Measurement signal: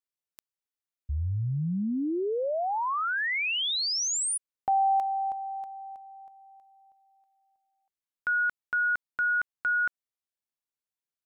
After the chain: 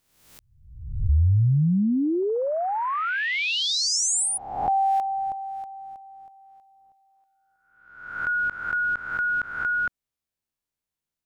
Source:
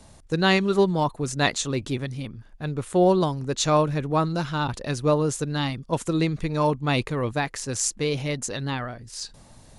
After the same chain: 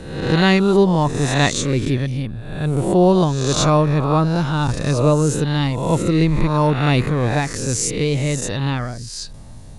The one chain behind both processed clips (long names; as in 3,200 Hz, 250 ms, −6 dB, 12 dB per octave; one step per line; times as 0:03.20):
peak hold with a rise ahead of every peak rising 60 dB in 0.87 s
low-shelf EQ 250 Hz +11 dB
level +1 dB